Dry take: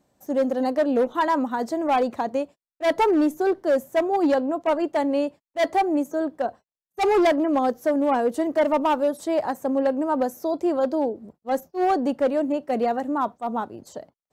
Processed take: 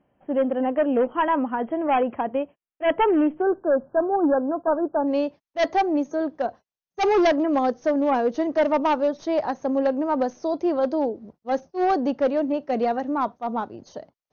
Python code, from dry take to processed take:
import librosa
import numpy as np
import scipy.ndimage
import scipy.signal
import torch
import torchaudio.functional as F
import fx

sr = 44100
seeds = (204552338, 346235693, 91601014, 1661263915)

y = fx.tracing_dist(x, sr, depth_ms=0.057)
y = fx.brickwall_lowpass(y, sr, high_hz=fx.steps((0.0, 3300.0), (3.41, 1700.0), (5.06, 6600.0)))